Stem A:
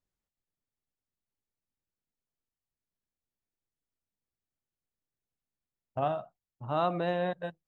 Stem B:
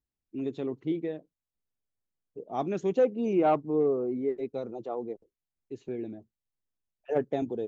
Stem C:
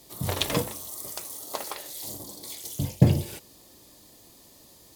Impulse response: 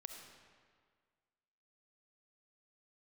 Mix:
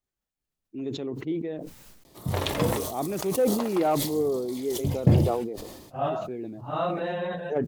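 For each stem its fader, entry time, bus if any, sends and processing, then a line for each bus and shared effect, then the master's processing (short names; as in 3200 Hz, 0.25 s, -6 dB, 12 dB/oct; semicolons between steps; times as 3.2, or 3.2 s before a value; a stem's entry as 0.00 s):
+0.5 dB, 0.00 s, no send, phase scrambler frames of 0.1 s; notches 60/120/180 Hz
-0.5 dB, 0.40 s, no send, dry
+1.0 dB, 2.05 s, no send, high shelf 3600 Hz -11.5 dB; auto duck -16 dB, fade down 1.10 s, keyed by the first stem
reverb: off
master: sustainer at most 45 dB/s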